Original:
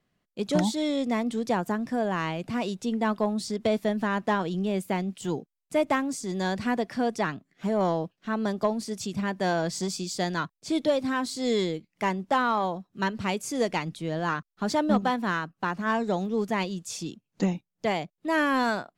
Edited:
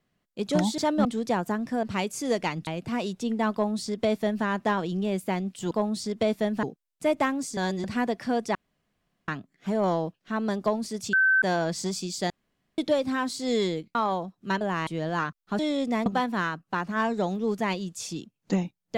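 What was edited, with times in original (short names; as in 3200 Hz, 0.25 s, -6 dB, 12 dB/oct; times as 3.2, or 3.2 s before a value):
0.78–1.25 swap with 14.69–14.96
2.03–2.29 swap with 13.13–13.97
3.15–4.07 copy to 5.33
6.27–6.54 reverse
7.25 insert room tone 0.73 s
9.1–9.39 bleep 1540 Hz -17.5 dBFS
10.27–10.75 room tone
11.92–12.47 cut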